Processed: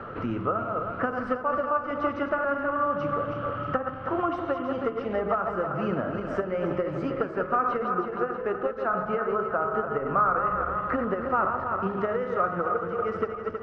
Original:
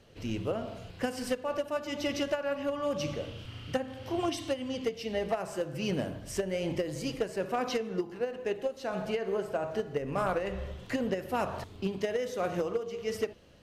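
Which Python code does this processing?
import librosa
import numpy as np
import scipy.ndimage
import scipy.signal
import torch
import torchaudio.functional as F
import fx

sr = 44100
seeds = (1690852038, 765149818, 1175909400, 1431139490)

y = fx.reverse_delay_fb(x, sr, ms=159, feedback_pct=65, wet_db=-6.5)
y = fx.lowpass_res(y, sr, hz=1300.0, q=11.0)
y = fx.band_squash(y, sr, depth_pct=70)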